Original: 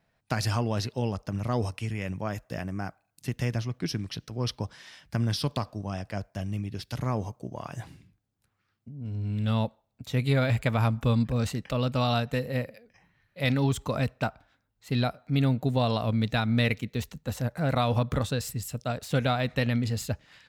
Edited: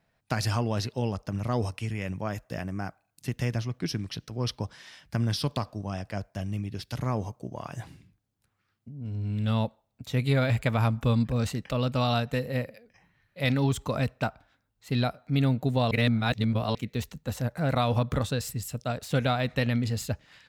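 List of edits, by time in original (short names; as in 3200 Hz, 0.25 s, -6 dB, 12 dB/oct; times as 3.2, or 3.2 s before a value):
15.91–16.75 reverse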